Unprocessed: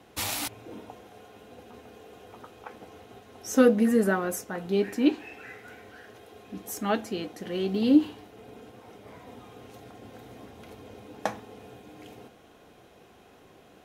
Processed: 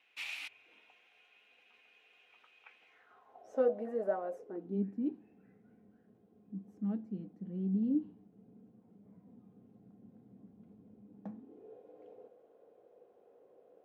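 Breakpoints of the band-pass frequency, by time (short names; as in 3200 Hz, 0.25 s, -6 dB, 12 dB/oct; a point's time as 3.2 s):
band-pass, Q 5
2.85 s 2500 Hz
3.44 s 630 Hz
4.28 s 630 Hz
4.86 s 190 Hz
11.27 s 190 Hz
11.76 s 500 Hz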